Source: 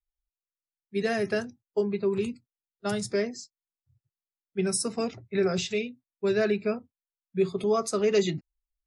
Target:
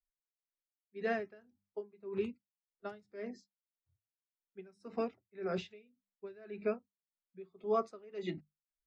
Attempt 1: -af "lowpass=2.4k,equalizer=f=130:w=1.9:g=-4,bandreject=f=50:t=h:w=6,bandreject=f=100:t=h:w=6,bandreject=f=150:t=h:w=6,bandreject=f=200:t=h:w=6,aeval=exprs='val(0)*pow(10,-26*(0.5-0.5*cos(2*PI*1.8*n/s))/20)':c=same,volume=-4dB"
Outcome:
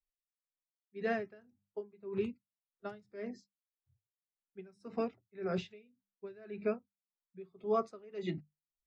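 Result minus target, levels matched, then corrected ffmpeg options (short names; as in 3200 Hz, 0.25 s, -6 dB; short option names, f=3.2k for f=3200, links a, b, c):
125 Hz band +3.0 dB
-af "lowpass=2.4k,equalizer=f=130:w=1.9:g=-13,bandreject=f=50:t=h:w=6,bandreject=f=100:t=h:w=6,bandreject=f=150:t=h:w=6,bandreject=f=200:t=h:w=6,aeval=exprs='val(0)*pow(10,-26*(0.5-0.5*cos(2*PI*1.8*n/s))/20)':c=same,volume=-4dB"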